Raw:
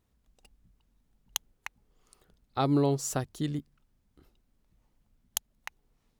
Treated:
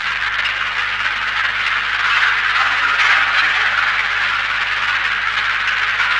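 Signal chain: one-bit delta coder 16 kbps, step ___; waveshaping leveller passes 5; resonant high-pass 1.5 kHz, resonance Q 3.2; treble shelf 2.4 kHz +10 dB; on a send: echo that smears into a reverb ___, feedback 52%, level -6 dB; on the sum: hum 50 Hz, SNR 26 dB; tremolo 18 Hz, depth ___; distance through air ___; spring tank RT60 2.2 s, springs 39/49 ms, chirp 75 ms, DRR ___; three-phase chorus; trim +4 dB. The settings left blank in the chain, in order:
-21 dBFS, 512 ms, 48%, 170 m, 0 dB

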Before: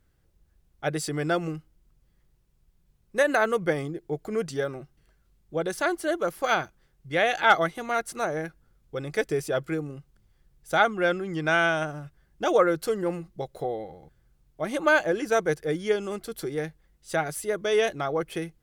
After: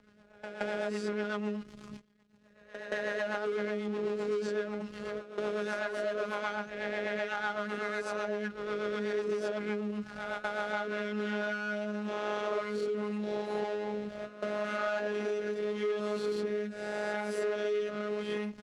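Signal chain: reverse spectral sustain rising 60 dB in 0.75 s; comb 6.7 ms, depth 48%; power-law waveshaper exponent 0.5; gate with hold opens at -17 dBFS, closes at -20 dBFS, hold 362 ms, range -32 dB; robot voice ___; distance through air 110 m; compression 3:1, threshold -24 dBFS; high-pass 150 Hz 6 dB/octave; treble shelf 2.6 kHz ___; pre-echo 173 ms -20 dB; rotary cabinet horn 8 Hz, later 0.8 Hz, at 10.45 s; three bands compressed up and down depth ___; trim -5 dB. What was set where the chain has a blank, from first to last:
209 Hz, -3 dB, 70%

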